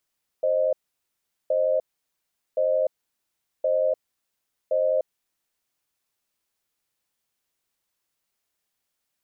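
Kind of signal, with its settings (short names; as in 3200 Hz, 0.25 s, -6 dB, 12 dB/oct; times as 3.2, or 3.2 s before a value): cadence 526 Hz, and 618 Hz, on 0.30 s, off 0.77 s, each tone -22 dBFS 5.14 s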